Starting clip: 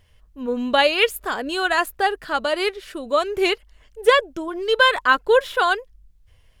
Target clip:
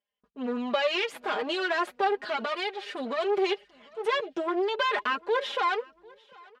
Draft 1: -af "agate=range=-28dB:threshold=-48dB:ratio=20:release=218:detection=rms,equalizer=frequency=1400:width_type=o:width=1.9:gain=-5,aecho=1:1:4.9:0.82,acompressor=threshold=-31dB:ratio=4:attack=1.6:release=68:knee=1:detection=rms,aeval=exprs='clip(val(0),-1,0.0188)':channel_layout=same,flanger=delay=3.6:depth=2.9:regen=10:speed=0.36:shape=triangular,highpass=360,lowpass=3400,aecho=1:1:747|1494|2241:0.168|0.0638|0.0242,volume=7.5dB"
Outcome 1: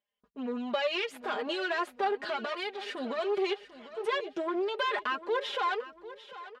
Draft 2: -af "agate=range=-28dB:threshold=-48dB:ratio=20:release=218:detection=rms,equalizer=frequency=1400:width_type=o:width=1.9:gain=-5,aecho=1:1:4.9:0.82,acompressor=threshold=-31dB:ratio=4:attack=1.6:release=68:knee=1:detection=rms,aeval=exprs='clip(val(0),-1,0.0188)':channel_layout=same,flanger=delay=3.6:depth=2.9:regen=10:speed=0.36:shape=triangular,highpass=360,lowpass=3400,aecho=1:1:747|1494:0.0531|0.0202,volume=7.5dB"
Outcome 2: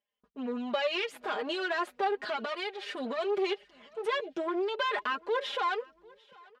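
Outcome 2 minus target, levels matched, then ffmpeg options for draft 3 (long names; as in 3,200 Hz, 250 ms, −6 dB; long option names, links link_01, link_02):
downward compressor: peak gain reduction +5 dB
-af "agate=range=-28dB:threshold=-48dB:ratio=20:release=218:detection=rms,equalizer=frequency=1400:width_type=o:width=1.9:gain=-5,aecho=1:1:4.9:0.82,acompressor=threshold=-24.5dB:ratio=4:attack=1.6:release=68:knee=1:detection=rms,aeval=exprs='clip(val(0),-1,0.0188)':channel_layout=same,flanger=delay=3.6:depth=2.9:regen=10:speed=0.36:shape=triangular,highpass=360,lowpass=3400,aecho=1:1:747|1494:0.0531|0.0202,volume=7.5dB"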